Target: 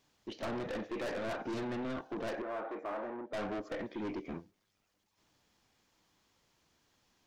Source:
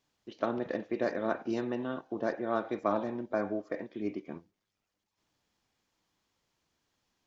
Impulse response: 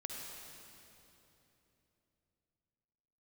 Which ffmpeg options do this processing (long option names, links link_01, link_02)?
-filter_complex "[0:a]aeval=exprs='(tanh(112*val(0)+0.15)-tanh(0.15))/112':channel_layout=same,asettb=1/sr,asplit=3[link_01][link_02][link_03];[link_01]atrim=end=2.424[link_04];[link_02]atrim=start=2.42:end=3.33,asetpts=PTS-STARTPTS,afade=type=in:duration=0.004:curve=qsin,afade=type=out:start_time=0.906:duration=0.004:curve=qsin,acrossover=split=290 2000:gain=0.0891 1 0.1[link_05][link_06][link_07];[link_05][link_06][link_07]amix=inputs=3:normalize=0[link_08];[link_03]atrim=start=3.326[link_09];[link_04][link_08]acrossfade=duration=0.004:curve1=hsin:curve2=qsin[link_10];[link_10][link_09]acrossfade=duration=0.004:curve1=qsin:curve2=hsin,volume=6dB"